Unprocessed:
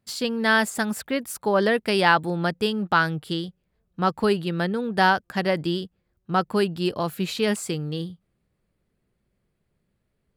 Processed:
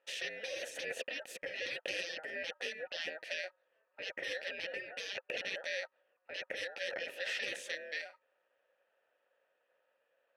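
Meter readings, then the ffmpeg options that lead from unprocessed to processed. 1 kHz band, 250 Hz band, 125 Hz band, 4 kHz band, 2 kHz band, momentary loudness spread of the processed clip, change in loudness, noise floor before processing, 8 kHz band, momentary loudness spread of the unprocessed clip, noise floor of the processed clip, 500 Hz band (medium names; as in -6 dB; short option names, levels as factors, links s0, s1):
-31.5 dB, -33.5 dB, under -35 dB, -10.5 dB, -13.0 dB, 5 LU, -16.0 dB, -75 dBFS, -13.0 dB, 9 LU, -80 dBFS, -18.0 dB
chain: -filter_complex "[0:a]aeval=exprs='val(0)*sin(2*PI*1100*n/s)':c=same,afftfilt=real='re*lt(hypot(re,im),0.0398)':imag='im*lt(hypot(re,im),0.0398)':win_size=1024:overlap=0.75,asplit=3[s0][s1][s2];[s0]bandpass=f=530:t=q:w=8,volume=1[s3];[s1]bandpass=f=1840:t=q:w=8,volume=0.501[s4];[s2]bandpass=f=2480:t=q:w=8,volume=0.355[s5];[s3][s4][s5]amix=inputs=3:normalize=0,volume=6.68"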